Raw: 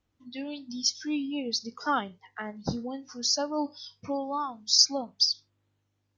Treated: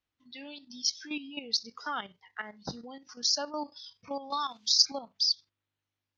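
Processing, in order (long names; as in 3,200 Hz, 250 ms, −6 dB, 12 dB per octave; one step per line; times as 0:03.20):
tilt shelving filter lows −7 dB, about 910 Hz
output level in coarse steps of 11 dB
low-pass filter 4,700 Hz 12 dB per octave
0:04.30–0:04.92: multiband upward and downward compressor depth 70%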